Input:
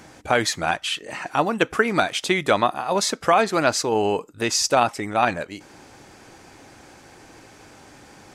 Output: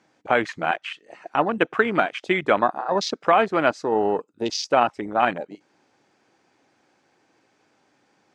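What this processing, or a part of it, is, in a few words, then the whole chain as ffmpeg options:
over-cleaned archive recording: -af "highpass=170,lowpass=5.9k,afwtdn=0.0447"

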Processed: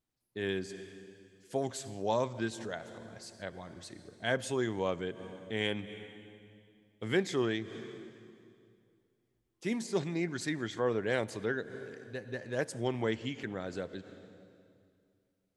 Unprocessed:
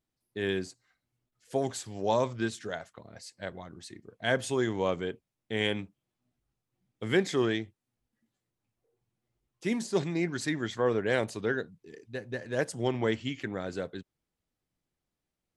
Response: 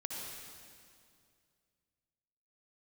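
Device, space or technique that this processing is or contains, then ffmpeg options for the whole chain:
ducked reverb: -filter_complex "[0:a]asplit=3[a][b][c];[1:a]atrim=start_sample=2205[d];[b][d]afir=irnorm=-1:irlink=0[e];[c]apad=whole_len=686243[f];[e][f]sidechaincompress=threshold=-43dB:ratio=8:attack=8.6:release=126,volume=-6.5dB[g];[a][g]amix=inputs=2:normalize=0,volume=-4dB"

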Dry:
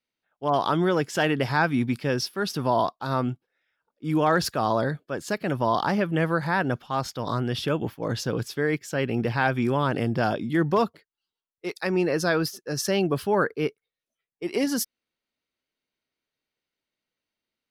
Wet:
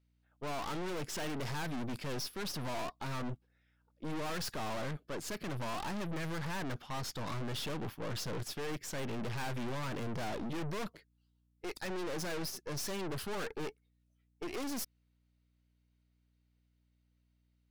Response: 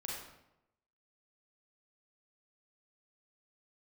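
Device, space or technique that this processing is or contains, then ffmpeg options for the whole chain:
valve amplifier with mains hum: -af "aeval=exprs='(tanh(89.1*val(0)+0.75)-tanh(0.75))/89.1':c=same,aeval=exprs='val(0)+0.0002*(sin(2*PI*60*n/s)+sin(2*PI*2*60*n/s)/2+sin(2*PI*3*60*n/s)/3+sin(2*PI*4*60*n/s)/4+sin(2*PI*5*60*n/s)/5)':c=same,volume=1.5dB"

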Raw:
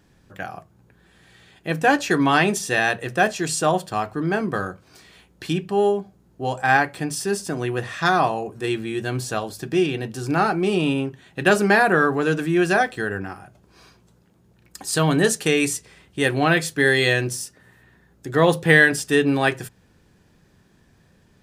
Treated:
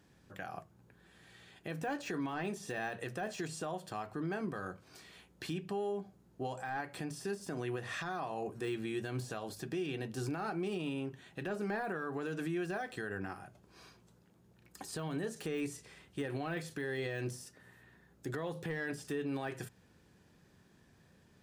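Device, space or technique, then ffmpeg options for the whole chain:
podcast mastering chain: -af "highpass=f=75:p=1,deesser=0.8,acompressor=threshold=-24dB:ratio=3,alimiter=limit=-22.5dB:level=0:latency=1:release=140,volume=-6dB" -ar 44100 -c:a libmp3lame -b:a 128k

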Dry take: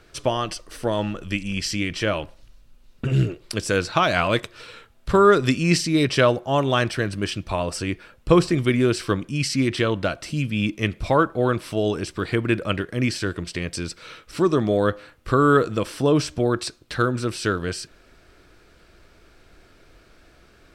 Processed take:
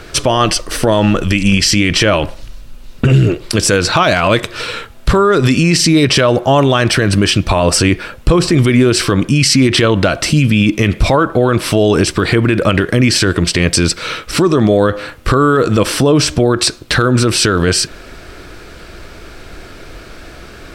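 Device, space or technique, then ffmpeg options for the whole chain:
loud club master: -af "acompressor=threshold=-22dB:ratio=2.5,asoftclip=type=hard:threshold=-12dB,alimiter=level_in=20.5dB:limit=-1dB:release=50:level=0:latency=1,volume=-1dB"

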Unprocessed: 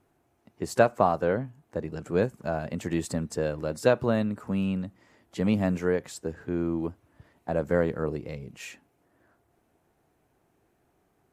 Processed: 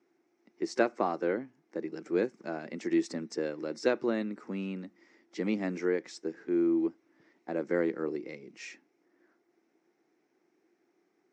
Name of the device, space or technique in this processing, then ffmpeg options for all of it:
television speaker: -af "highpass=f=210:w=0.5412,highpass=f=210:w=1.3066,equalizer=f=340:t=q:w=4:g=10,equalizer=f=640:t=q:w=4:g=-5,equalizer=f=1k:t=q:w=4:g=-3,equalizer=f=2.1k:t=q:w=4:g=8,equalizer=f=3k:t=q:w=4:g=-3,equalizer=f=5.5k:t=q:w=4:g=9,lowpass=f=6.6k:w=0.5412,lowpass=f=6.6k:w=1.3066,volume=-5.5dB"

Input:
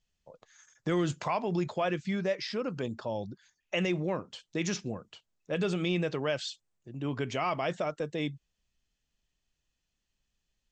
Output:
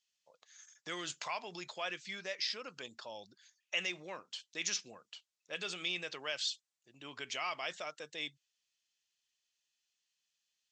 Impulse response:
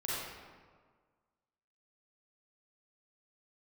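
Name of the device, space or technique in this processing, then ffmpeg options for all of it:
piezo pickup straight into a mixer: -af "lowpass=5.4k,aderivative,volume=8.5dB"

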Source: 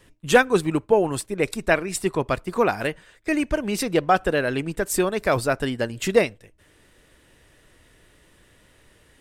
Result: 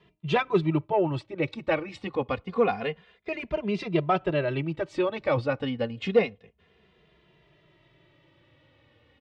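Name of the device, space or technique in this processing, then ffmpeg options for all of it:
barber-pole flanger into a guitar amplifier: -filter_complex "[0:a]asplit=2[a][b];[b]adelay=2.5,afreqshift=-0.28[c];[a][c]amix=inputs=2:normalize=1,asoftclip=type=tanh:threshold=-10dB,highpass=79,equalizer=f=150:t=q:w=4:g=4,equalizer=f=270:t=q:w=4:g=-3,equalizer=f=1.6k:t=q:w=4:g=-9,lowpass=f=3.7k:w=0.5412,lowpass=f=3.7k:w=1.3066"

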